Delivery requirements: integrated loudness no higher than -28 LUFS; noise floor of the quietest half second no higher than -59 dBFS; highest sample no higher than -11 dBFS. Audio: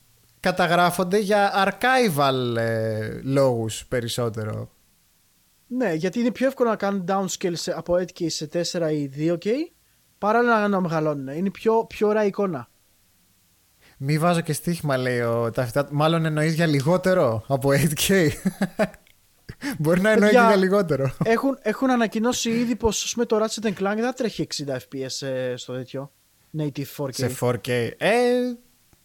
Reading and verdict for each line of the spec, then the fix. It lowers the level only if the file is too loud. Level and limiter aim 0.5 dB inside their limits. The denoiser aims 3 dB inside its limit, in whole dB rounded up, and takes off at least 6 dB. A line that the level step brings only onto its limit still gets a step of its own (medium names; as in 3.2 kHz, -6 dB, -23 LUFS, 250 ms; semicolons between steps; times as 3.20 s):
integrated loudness -22.5 LUFS: fail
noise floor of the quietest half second -62 dBFS: pass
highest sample -5.5 dBFS: fail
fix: trim -6 dB